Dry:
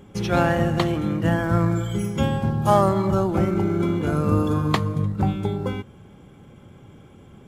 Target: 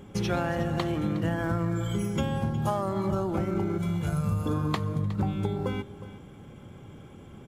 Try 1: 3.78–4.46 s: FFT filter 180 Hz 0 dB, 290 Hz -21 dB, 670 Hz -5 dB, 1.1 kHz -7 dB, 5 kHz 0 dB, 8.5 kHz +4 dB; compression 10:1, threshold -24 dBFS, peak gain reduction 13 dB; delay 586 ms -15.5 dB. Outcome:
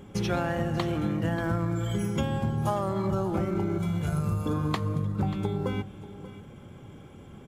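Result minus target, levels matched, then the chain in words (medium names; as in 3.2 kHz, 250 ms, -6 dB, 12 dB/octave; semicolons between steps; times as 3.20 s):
echo 223 ms late
3.78–4.46 s: FFT filter 180 Hz 0 dB, 290 Hz -21 dB, 670 Hz -5 dB, 1.1 kHz -7 dB, 5 kHz 0 dB, 8.5 kHz +4 dB; compression 10:1, threshold -24 dBFS, peak gain reduction 13 dB; delay 363 ms -15.5 dB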